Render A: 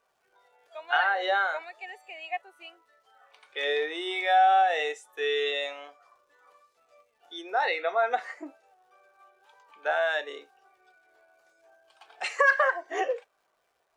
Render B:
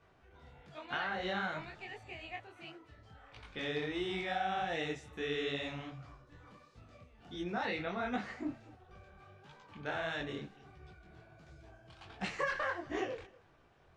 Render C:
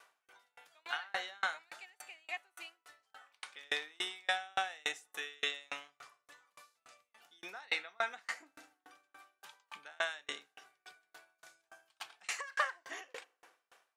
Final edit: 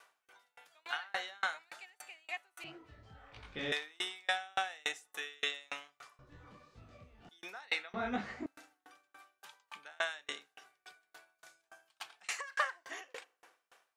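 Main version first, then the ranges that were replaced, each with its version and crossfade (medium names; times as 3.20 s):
C
2.64–3.72 s: from B
6.19–7.29 s: from B
7.94–8.46 s: from B
not used: A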